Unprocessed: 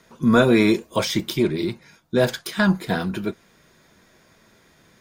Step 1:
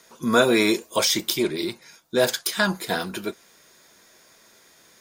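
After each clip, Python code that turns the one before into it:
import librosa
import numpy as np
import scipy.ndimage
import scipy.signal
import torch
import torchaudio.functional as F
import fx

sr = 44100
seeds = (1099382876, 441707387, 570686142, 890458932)

y = fx.bass_treble(x, sr, bass_db=-12, treble_db=9)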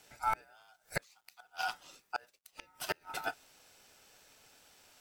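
y = fx.gate_flip(x, sr, shuts_db=-14.0, range_db=-35)
y = y * np.sin(2.0 * np.pi * 1100.0 * np.arange(len(y)) / sr)
y = fx.quant_dither(y, sr, seeds[0], bits=12, dither='none')
y = F.gain(torch.from_numpy(y), -4.5).numpy()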